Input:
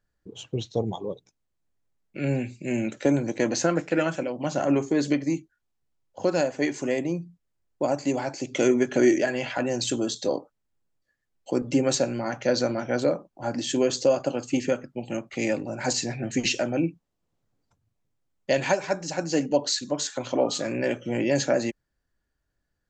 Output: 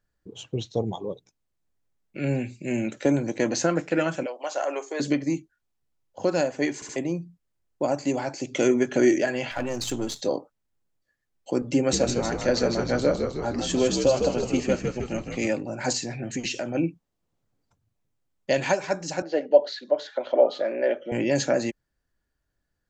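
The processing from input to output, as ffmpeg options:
-filter_complex "[0:a]asettb=1/sr,asplit=3[a][b][c];[a]atrim=end=4.264[d];[b]atrim=start=4.26:end=5,asetpts=PTS-STARTPTS,afade=t=in:d=0.004:c=qsin,afade=t=out:st=0.736:d=0.004:c=qsin,highpass=f=480:w=0.5412,highpass=f=480:w=1.3066[e];[c]atrim=start=4.996[f];[d][e]acrossfade=d=0.004:c1=hsin:c2=qsin[g];[g][f]acrossfade=d=0.004:c1=qsin:c2=hsin,asettb=1/sr,asplit=3[h][i][j];[h]atrim=end=9.514[k];[i]atrim=start=9.51:end=10.21,asetpts=PTS-STARTPTS,afade=t=in:d=0.004:c=qsin,afade=t=out:st=0.696:d=0.004:c=qsin,aeval=exprs='if(lt(val(0),0),0.447*val(0),val(0))':c=same[l];[j]atrim=start=10.206[m];[k][l]acrossfade=d=0.004:c1=hsin:c2=qsin[n];[n][m]acrossfade=d=0.004:c1=qsin:c2=hsin,asettb=1/sr,asplit=3[o][p][q];[o]atrim=end=11.774[r];[p]atrim=start=11.77:end=15.47,asetpts=PTS-STARTPTS,afade=t=in:d=0.004:c=qsin,afade=t=out:st=3.696:d=0.004:c=qsin,asplit=9[s][t][u][v][w][x][y][z][aa];[t]adelay=156,afreqshift=-64,volume=-5.5dB[ab];[u]adelay=312,afreqshift=-128,volume=-10.2dB[ac];[v]adelay=468,afreqshift=-192,volume=-15dB[ad];[w]adelay=624,afreqshift=-256,volume=-19.7dB[ae];[x]adelay=780,afreqshift=-320,volume=-24.4dB[af];[y]adelay=936,afreqshift=-384,volume=-29.2dB[ag];[z]adelay=1092,afreqshift=-448,volume=-33.9dB[ah];[aa]adelay=1248,afreqshift=-512,volume=-38.6dB[ai];[s][ab][ac][ad][ae][af][ag][ah][ai]amix=inputs=9:normalize=0,atrim=end_sample=163170[aj];[q]atrim=start=15.466[ak];[r][aj]acrossfade=d=0.004:c1=hsin:c2=qsin[al];[al][ak]acrossfade=d=0.004:c1=qsin:c2=hsin,asettb=1/sr,asplit=3[am][an][ao];[am]atrim=end=15.974[ap];[an]atrim=start=15.97:end=16.75,asetpts=PTS-STARTPTS,afade=t=in:d=0.004:c=qsin,afade=t=out:st=0.776:d=0.004:c=qsin,acompressor=threshold=-29dB:ratio=2:attack=3.2:release=140:knee=1:detection=peak[aq];[ao]atrim=start=16.746[ar];[ap][aq]acrossfade=d=0.004:c1=hsin:c2=qsin[as];[as][ar]acrossfade=d=0.004:c1=qsin:c2=hsin,asettb=1/sr,asplit=3[at][au][av];[at]atrim=end=19.224[aw];[au]atrim=start=19.22:end=21.12,asetpts=PTS-STARTPTS,afade=t=in:d=0.004:c=qsin,afade=t=out:st=1.896:d=0.004:c=qsin,highpass=f=270:w=0.5412,highpass=f=270:w=1.3066,equalizer=f=280:t=q:w=4:g=-8,equalizer=f=600:t=q:w=4:g=9,equalizer=f=1.1k:t=q:w=4:g=-6,equalizer=f=2.6k:t=q:w=4:g=-8,lowpass=f=3.5k:w=0.5412,lowpass=f=3.5k:w=1.3066[ax];[av]atrim=start=21.116[ay];[aw][ax]acrossfade=d=0.004:c1=hsin:c2=qsin[az];[az][ay]acrossfade=d=0.004:c1=qsin:c2=hsin,asplit=4[ba][bb][bc][bd];[ba]atrim=end=6.822[be];[bb]atrim=start=6.748:end=6.822[bf];[bc]atrim=start=6.748:end=6.822[bg];[bd]atrim=start=6.958[bh];[be][bf]acrossfade=d=0.004:c1=hsin:c2=hsin[bi];[bi][bg]acrossfade=d=0.004:c1=hsin:c2=hsin[bj];[bj][bh]acrossfade=d=0.004:c1=hsin:c2=hsin"

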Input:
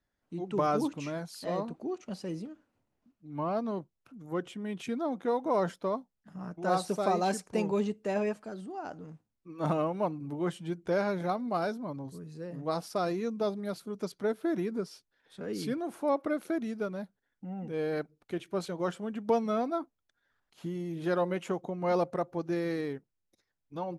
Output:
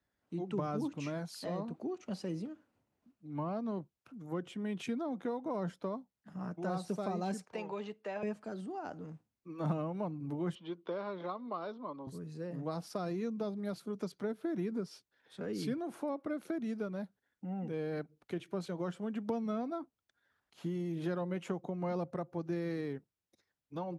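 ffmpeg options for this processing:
-filter_complex "[0:a]asettb=1/sr,asplit=3[a][b][c];[a]atrim=end=7.454[d];[b]atrim=start=7.45:end=8.23,asetpts=PTS-STARTPTS,afade=t=in:d=0.004:c=qsin,afade=t=out:st=0.776:d=0.004:c=qsin,acrossover=split=520 4800:gain=0.2 1 0.178[e][f][g];[e][f][g]amix=inputs=3:normalize=0[h];[c]atrim=start=8.226[i];[d][h]acrossfade=d=0.004:c1=hsin:c2=qsin[j];[j][i]acrossfade=d=0.004:c1=qsin:c2=hsin,asettb=1/sr,asplit=3[k][l][m];[k]atrim=end=10.554[n];[l]atrim=start=10.55:end=12.07,asetpts=PTS-STARTPTS,afade=t=in:d=0.004:c=qsin,afade=t=out:st=1.516:d=0.004:c=qsin,highpass=360,equalizer=f=740:t=q:w=4:g=-6,equalizer=f=1.1k:t=q:w=4:g=8,equalizer=f=1.6k:t=q:w=4:g=-8,equalizer=f=2.3k:t=q:w=4:g=-5,equalizer=f=3.4k:t=q:w=4:g=5,lowpass=f=4k:w=0.5412,lowpass=f=4k:w=1.3066[o];[m]atrim=start=12.066[p];[n][o]acrossfade=d=0.004:c1=hsin:c2=qsin[q];[q][p]acrossfade=d=0.004:c1=qsin:c2=hsin,highpass=56,highshelf=f=7.8k:g=-5,acrossover=split=230[r][s];[s]acompressor=threshold=-38dB:ratio=4[t];[r][t]amix=inputs=2:normalize=0"

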